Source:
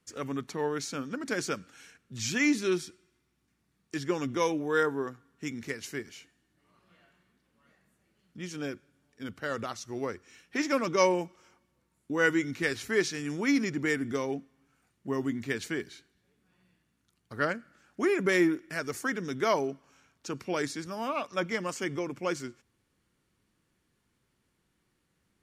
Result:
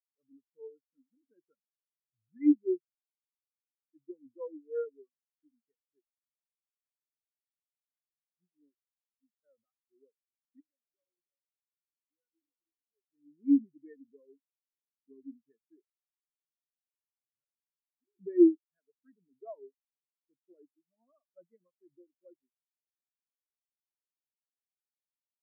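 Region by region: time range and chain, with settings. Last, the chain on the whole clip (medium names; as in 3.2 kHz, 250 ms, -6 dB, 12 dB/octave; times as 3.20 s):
10.60–13.10 s: compression 3:1, threshold -43 dBFS + delay 317 ms -3.5 dB
17.39–18.19 s: compression 16:1, threshold -31 dBFS + comb 7.3 ms, depth 32% + detune thickener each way 32 cents
whole clip: waveshaping leveller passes 1; treble shelf 2.6 kHz -5 dB; spectral contrast expander 4:1; trim +2.5 dB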